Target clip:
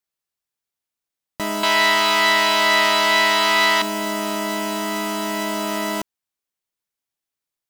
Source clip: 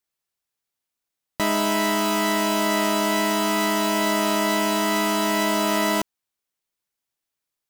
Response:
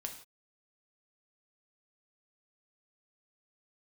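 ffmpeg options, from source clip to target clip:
-filter_complex "[0:a]asettb=1/sr,asplit=3[a][b][c];[a]atrim=end=1.634[d];[b]atrim=start=1.63:end=3.82,asetpts=PTS-STARTPTS,afade=t=in:d=0.004:c=qsin,afade=t=out:st=2.186:d=0.004:c=qsin,equalizer=f=250:t=o:w=1:g=-8,equalizer=f=500:t=o:w=1:g=3,equalizer=f=1k:t=o:w=1:g=6,equalizer=f=2k:t=o:w=1:g=10,equalizer=f=4k:t=o:w=1:g=12[e];[c]atrim=start=3.816[f];[d][e]acrossfade=d=0.004:c1=hsin:c2=qsin[g];[g][f]acrossfade=d=0.004:c1=qsin:c2=hsin,volume=-2.5dB"

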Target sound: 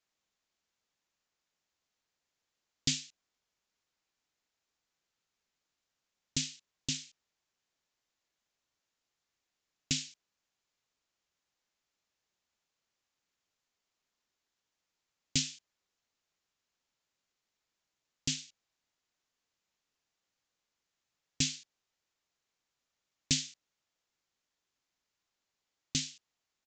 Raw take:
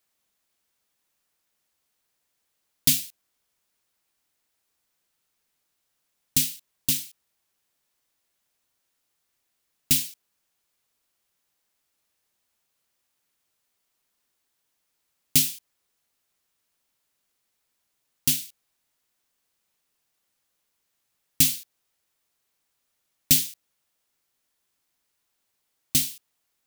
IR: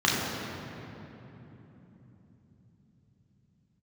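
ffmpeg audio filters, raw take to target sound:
-af "aresample=16000,aresample=44100,volume=-6dB"

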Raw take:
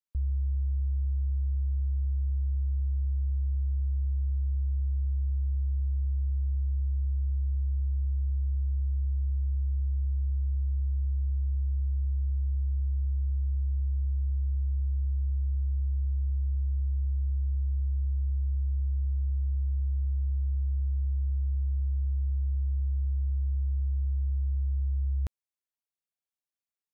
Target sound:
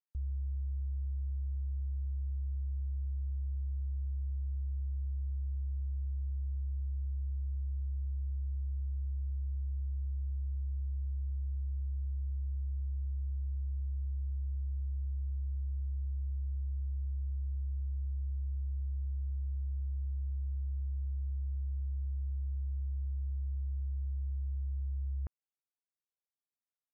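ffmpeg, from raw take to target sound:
-af "lowpass=f=1.7k:w=0.5412,lowpass=f=1.7k:w=1.3066,volume=-7.5dB"

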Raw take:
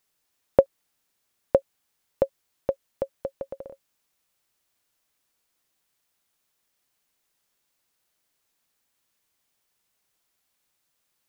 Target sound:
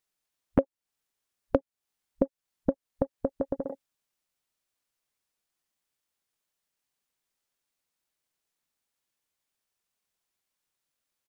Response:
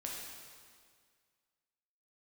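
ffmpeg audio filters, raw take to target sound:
-filter_complex "[0:a]afwtdn=0.00794,asplit=2[a][b];[b]asetrate=22050,aresample=44100,atempo=2,volume=-4dB[c];[a][c]amix=inputs=2:normalize=0,acompressor=threshold=-31dB:ratio=3,volume=6dB"

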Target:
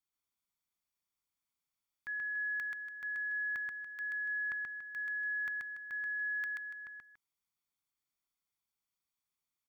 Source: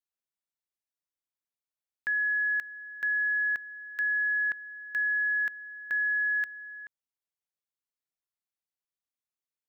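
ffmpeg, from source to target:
-af "aecho=1:1:0.9:0.49,alimiter=level_in=11dB:limit=-24dB:level=0:latency=1,volume=-11dB,aecho=1:1:131.2|285.7:0.794|0.251"

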